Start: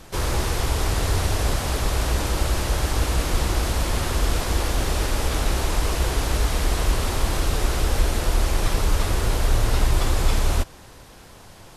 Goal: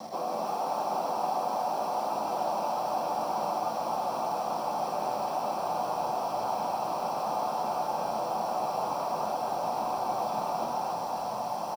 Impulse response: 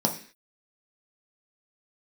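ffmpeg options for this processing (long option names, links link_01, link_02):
-filter_complex "[0:a]asplit=3[link_01][link_02][link_03];[link_01]bandpass=frequency=730:width_type=q:width=8,volume=0dB[link_04];[link_02]bandpass=frequency=1090:width_type=q:width=8,volume=-6dB[link_05];[link_03]bandpass=frequency=2440:width_type=q:width=8,volume=-9dB[link_06];[link_04][link_05][link_06]amix=inputs=3:normalize=0,lowshelf=frequency=140:width_type=q:width=3:gain=-10.5,bandreject=frequency=60:width_type=h:width=6,bandreject=frequency=120:width_type=h:width=6,bandreject=frequency=180:width_type=h:width=6,bandreject=frequency=240:width_type=h:width=6,bandreject=frequency=300:width_type=h:width=6,bandreject=frequency=360:width_type=h:width=6,bandreject=frequency=420:width_type=h:width=6,acrossover=split=170[link_07][link_08];[link_08]acontrast=53[link_09];[link_07][link_09]amix=inputs=2:normalize=0,alimiter=level_in=6dB:limit=-24dB:level=0:latency=1:release=104,volume=-6dB,areverse,acompressor=threshold=-48dB:ratio=10,areverse,acrusher=bits=9:mix=0:aa=0.000001,asubboost=boost=5:cutoff=86,asplit=7[link_10][link_11][link_12][link_13][link_14][link_15][link_16];[link_11]adelay=276,afreqshift=110,volume=-3dB[link_17];[link_12]adelay=552,afreqshift=220,volume=-9.9dB[link_18];[link_13]adelay=828,afreqshift=330,volume=-16.9dB[link_19];[link_14]adelay=1104,afreqshift=440,volume=-23.8dB[link_20];[link_15]adelay=1380,afreqshift=550,volume=-30.7dB[link_21];[link_16]adelay=1656,afreqshift=660,volume=-37.7dB[link_22];[link_10][link_17][link_18][link_19][link_20][link_21][link_22]amix=inputs=7:normalize=0[link_23];[1:a]atrim=start_sample=2205[link_24];[link_23][link_24]afir=irnorm=-1:irlink=0,volume=4dB"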